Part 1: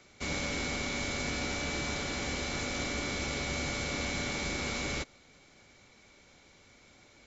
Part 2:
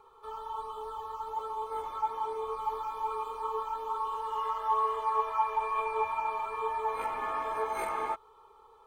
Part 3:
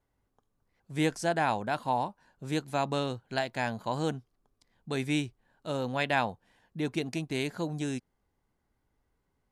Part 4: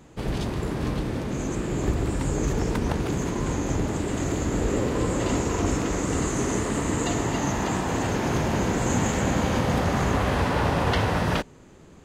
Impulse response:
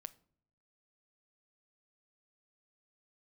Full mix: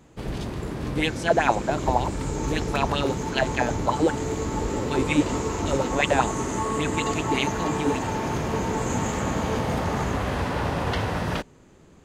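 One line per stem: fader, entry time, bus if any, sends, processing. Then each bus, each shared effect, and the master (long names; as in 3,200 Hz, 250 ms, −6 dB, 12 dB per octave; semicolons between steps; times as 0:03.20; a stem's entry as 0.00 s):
−5.5 dB, 0.85 s, no send, first difference
−7.0 dB, 1.90 s, no send, parametric band 510 Hz +12.5 dB 1.4 octaves
−0.5 dB, 0.00 s, no send, auto-filter bell 5.2 Hz 300–3,300 Hz +16 dB
−3.0 dB, 0.00 s, no send, no processing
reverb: not used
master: no processing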